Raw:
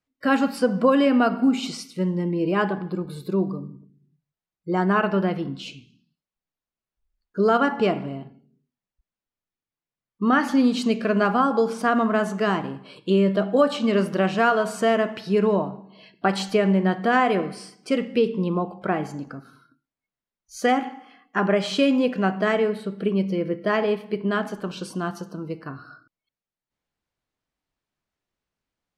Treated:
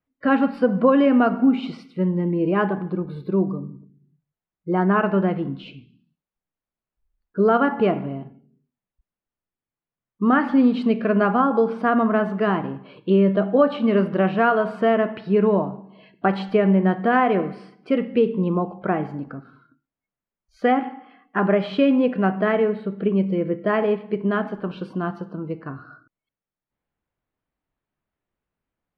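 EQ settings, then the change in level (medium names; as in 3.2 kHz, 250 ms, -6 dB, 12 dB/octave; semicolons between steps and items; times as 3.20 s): distance through air 430 m; +3.0 dB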